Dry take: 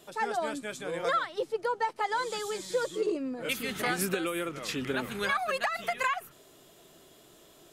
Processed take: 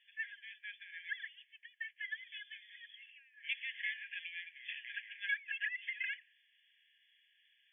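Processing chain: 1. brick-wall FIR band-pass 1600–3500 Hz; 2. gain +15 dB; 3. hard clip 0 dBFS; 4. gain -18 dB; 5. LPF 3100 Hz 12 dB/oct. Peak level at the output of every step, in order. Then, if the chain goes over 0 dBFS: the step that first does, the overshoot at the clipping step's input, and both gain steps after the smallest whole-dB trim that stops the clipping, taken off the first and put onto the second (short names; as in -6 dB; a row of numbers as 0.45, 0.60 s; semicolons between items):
-18.5, -3.5, -3.5, -21.5, -23.5 dBFS; no overload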